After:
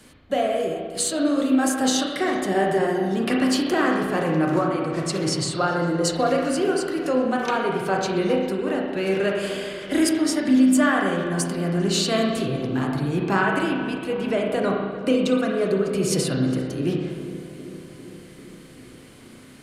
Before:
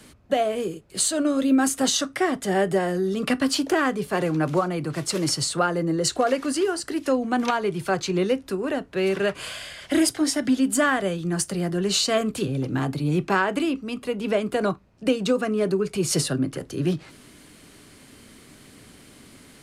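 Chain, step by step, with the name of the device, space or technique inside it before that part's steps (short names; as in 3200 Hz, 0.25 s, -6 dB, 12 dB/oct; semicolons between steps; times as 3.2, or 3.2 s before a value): dub delay into a spring reverb (darkening echo 0.398 s, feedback 68%, low-pass 1400 Hz, level -13.5 dB; spring tank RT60 1.4 s, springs 31/35 ms, chirp 30 ms, DRR -0.5 dB); 4.62–5.79 LPF 9500 Hz 12 dB/oct; gain -2 dB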